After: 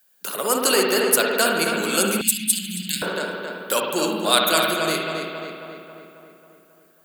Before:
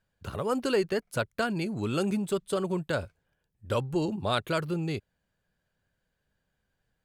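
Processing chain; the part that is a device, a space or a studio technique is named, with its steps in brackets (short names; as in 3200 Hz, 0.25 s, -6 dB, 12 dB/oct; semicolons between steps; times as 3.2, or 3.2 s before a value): steep high-pass 170 Hz 48 dB/oct; RIAA curve recording; dub delay into a spring reverb (darkening echo 0.271 s, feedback 60%, low-pass 3200 Hz, level -5 dB; spring tank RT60 1.5 s, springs 55 ms, chirp 20 ms, DRR 1 dB); 2.21–3.02 inverse Chebyshev band-stop 390–1300 Hz, stop band 40 dB; high shelf 9400 Hz +11.5 dB; gain +7 dB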